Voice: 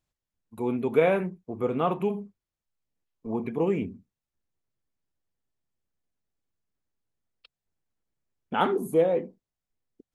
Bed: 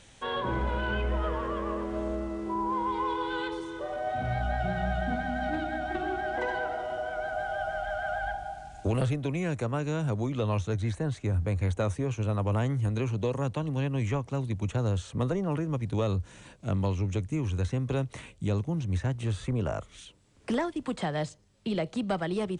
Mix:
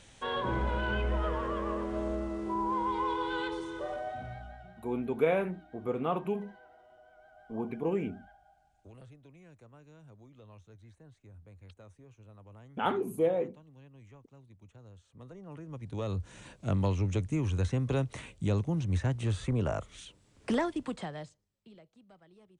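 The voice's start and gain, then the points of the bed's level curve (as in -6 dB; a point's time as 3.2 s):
4.25 s, -5.5 dB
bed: 3.9 s -1.5 dB
4.8 s -25.5 dB
15.01 s -25.5 dB
16.39 s -0.5 dB
20.75 s -0.5 dB
21.92 s -29.5 dB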